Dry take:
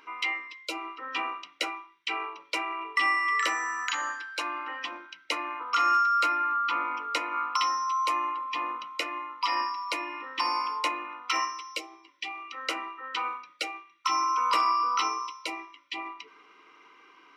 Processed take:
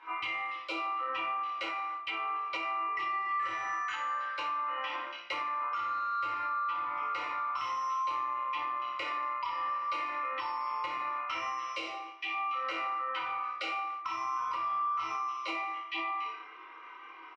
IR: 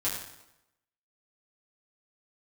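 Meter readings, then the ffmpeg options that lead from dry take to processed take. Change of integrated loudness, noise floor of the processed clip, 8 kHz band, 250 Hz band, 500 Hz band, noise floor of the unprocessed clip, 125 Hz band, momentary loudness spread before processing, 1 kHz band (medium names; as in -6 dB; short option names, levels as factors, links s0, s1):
-4.5 dB, -49 dBFS, under -15 dB, -7.0 dB, -3.5 dB, -58 dBFS, no reading, 13 LU, -3.5 dB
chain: -filter_complex "[0:a]highpass=f=900:p=1,highshelf=f=4300:g=-5.5,asplit=2[s0][s1];[s1]highpass=f=720:p=1,volume=2.51,asoftclip=type=tanh:threshold=0.158[s2];[s0][s2]amix=inputs=2:normalize=0,lowpass=f=1400:p=1,volume=0.501,aemphasis=mode=reproduction:type=50fm,aecho=1:1:27|56:0.631|0.447[s3];[1:a]atrim=start_sample=2205,afade=t=out:st=0.42:d=0.01,atrim=end_sample=18963,asetrate=48510,aresample=44100[s4];[s3][s4]afir=irnorm=-1:irlink=0,acompressor=threshold=0.0251:ratio=6,alimiter=level_in=1.41:limit=0.0631:level=0:latency=1:release=229,volume=0.708,volume=1.19"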